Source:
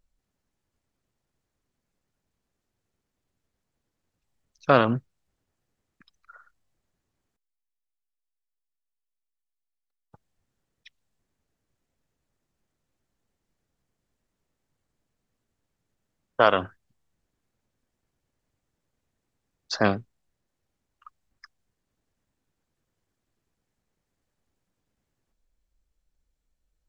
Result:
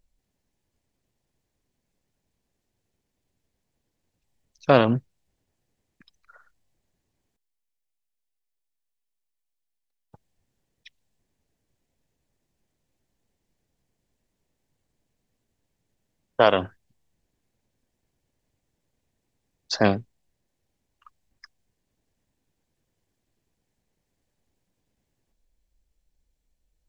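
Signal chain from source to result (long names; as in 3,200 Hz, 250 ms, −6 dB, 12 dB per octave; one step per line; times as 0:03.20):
parametric band 1,300 Hz −8 dB 0.53 octaves
level +3 dB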